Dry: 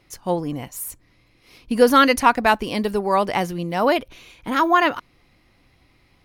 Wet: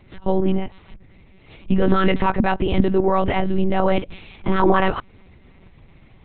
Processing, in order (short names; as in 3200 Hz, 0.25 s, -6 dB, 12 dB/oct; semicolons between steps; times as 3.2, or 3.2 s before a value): low shelf 440 Hz +9.5 dB; limiter -11.5 dBFS, peak gain reduction 13.5 dB; monotone LPC vocoder at 8 kHz 190 Hz; gain +3 dB